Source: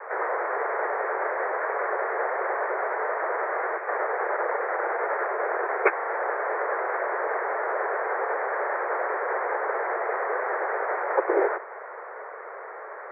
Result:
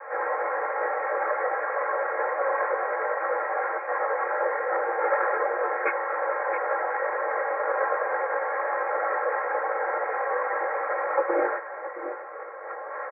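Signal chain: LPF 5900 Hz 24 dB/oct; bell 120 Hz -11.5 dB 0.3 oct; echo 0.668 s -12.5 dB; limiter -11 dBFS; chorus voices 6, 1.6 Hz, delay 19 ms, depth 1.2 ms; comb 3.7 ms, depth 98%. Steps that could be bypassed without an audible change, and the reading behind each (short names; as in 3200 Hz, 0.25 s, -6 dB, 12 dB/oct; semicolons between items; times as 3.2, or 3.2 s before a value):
LPF 5900 Hz: input band ends at 2600 Hz; bell 120 Hz: input band starts at 290 Hz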